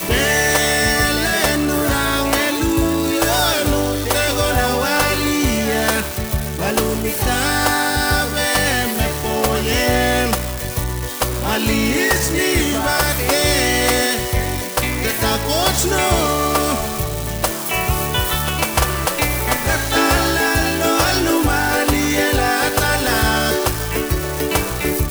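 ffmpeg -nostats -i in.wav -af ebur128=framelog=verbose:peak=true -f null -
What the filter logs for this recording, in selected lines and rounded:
Integrated loudness:
  I:         -17.0 LUFS
  Threshold: -27.0 LUFS
Loudness range:
  LRA:         2.1 LU
  Threshold: -37.1 LUFS
  LRA low:   -18.1 LUFS
  LRA high:  -16.0 LUFS
True peak:
  Peak:       -3.2 dBFS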